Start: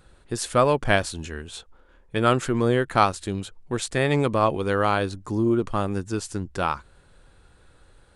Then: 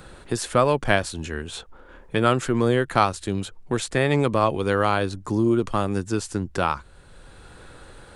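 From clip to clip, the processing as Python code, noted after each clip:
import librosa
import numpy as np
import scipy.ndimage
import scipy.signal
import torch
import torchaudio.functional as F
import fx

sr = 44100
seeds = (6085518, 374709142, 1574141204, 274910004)

y = fx.band_squash(x, sr, depth_pct=40)
y = F.gain(torch.from_numpy(y), 1.0).numpy()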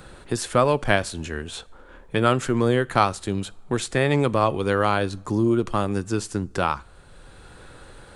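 y = fx.rev_double_slope(x, sr, seeds[0], early_s=0.38, late_s=2.7, knee_db=-21, drr_db=19.5)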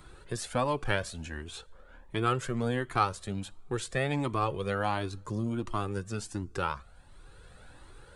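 y = fx.comb_cascade(x, sr, direction='rising', hz=1.4)
y = F.gain(torch.from_numpy(y), -4.0).numpy()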